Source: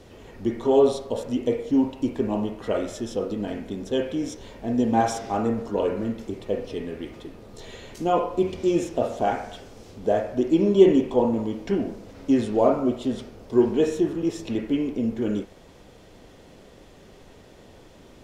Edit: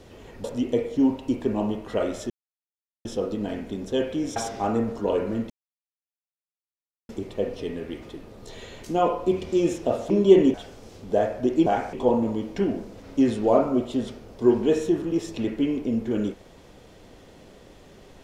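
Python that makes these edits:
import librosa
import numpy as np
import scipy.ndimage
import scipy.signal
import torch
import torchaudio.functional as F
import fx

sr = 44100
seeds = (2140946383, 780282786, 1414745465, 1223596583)

y = fx.edit(x, sr, fx.cut(start_s=0.44, length_s=0.74),
    fx.insert_silence(at_s=3.04, length_s=0.75),
    fx.cut(start_s=4.35, length_s=0.71),
    fx.insert_silence(at_s=6.2, length_s=1.59),
    fx.swap(start_s=9.21, length_s=0.27, other_s=10.6, other_length_s=0.44), tone=tone)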